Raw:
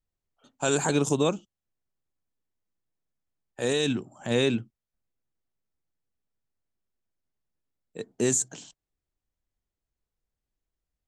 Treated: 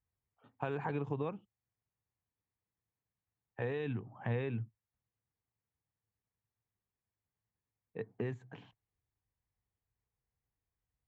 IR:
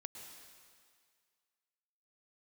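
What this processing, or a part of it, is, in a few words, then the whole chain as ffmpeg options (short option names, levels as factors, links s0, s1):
bass amplifier: -af "acompressor=threshold=0.0251:ratio=4,highpass=61,equalizer=f=110:t=q:w=4:g=8,equalizer=f=170:t=q:w=4:g=-4,equalizer=f=250:t=q:w=4:g=-7,equalizer=f=350:t=q:w=4:g=-8,equalizer=f=600:t=q:w=4:g=-9,equalizer=f=1400:t=q:w=4:g=-7,lowpass=f=2100:w=0.5412,lowpass=f=2100:w=1.3066,volume=1.19"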